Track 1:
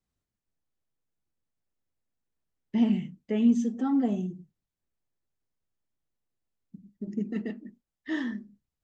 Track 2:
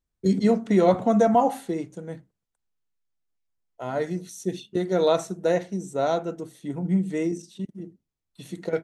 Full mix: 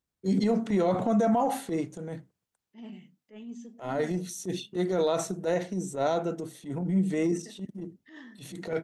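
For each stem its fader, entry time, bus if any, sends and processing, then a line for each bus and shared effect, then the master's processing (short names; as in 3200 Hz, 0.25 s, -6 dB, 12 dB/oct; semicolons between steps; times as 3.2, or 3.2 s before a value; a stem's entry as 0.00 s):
-11.5 dB, 0.00 s, no send, HPF 400 Hz 6 dB/oct
+1.0 dB, 0.00 s, no send, dry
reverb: off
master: HPF 82 Hz; transient shaper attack -11 dB, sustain +2 dB; limiter -17.5 dBFS, peak gain reduction 8.5 dB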